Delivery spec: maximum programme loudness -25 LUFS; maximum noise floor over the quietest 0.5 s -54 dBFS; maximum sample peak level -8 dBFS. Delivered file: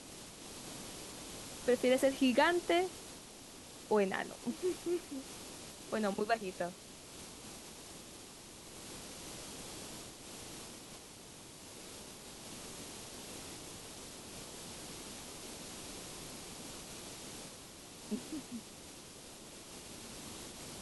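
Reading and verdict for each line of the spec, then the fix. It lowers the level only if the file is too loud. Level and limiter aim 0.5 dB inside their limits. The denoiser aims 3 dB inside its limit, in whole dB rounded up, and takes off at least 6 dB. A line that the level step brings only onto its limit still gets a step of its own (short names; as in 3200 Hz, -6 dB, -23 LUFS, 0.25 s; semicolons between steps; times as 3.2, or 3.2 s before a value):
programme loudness -39.5 LUFS: OK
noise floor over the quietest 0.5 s -53 dBFS: fail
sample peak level -17.5 dBFS: OK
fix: denoiser 6 dB, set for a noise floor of -53 dBFS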